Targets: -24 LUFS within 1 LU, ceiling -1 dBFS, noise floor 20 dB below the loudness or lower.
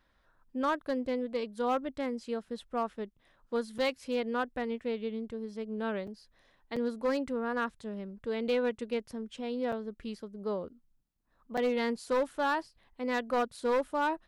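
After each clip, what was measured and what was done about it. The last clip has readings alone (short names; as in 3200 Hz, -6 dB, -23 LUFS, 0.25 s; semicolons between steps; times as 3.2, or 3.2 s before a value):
clipped 1.2%; flat tops at -23.5 dBFS; dropouts 5; longest dropout 5.1 ms; loudness -34.0 LUFS; peak -23.5 dBFS; loudness target -24.0 LUFS
-> clip repair -23.5 dBFS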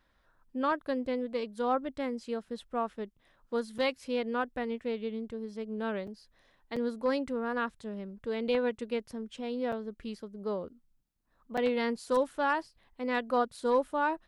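clipped 0.0%; dropouts 5; longest dropout 5.1 ms
-> interpolate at 3.78/6.07/6.76/9.72/11.57, 5.1 ms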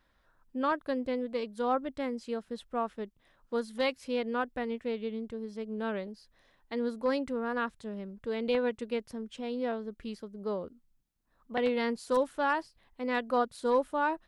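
dropouts 0; loudness -33.5 LUFS; peak -15.0 dBFS; loudness target -24.0 LUFS
-> gain +9.5 dB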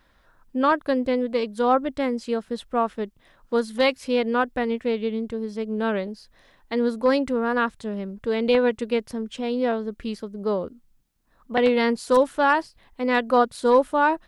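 loudness -24.0 LUFS; peak -5.5 dBFS; noise floor -61 dBFS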